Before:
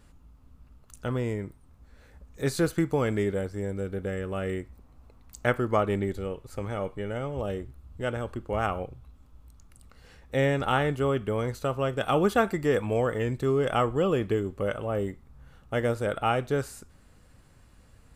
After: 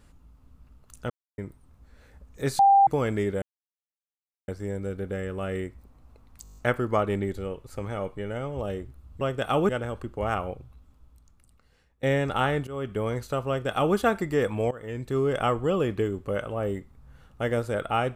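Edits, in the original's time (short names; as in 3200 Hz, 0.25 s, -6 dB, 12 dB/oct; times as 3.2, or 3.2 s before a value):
1.1–1.38 mute
2.59–2.87 bleep 792 Hz -13.5 dBFS
3.42 insert silence 1.06 s
5.37 stutter 0.02 s, 8 plays
8.91–10.35 fade out, to -20 dB
10.99–11.3 fade in, from -16.5 dB
11.8–12.28 copy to 8.01
13.03–13.52 fade in, from -18.5 dB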